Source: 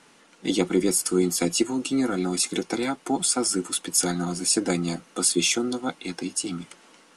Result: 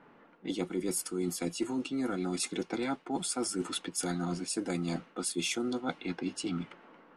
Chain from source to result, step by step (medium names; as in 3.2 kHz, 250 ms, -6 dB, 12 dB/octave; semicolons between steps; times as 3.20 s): level-controlled noise filter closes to 1.4 kHz, open at -19 dBFS; peaking EQ 6.6 kHz -5.5 dB 1.2 oct; reverse; compression, threshold -30 dBFS, peak gain reduction 13.5 dB; reverse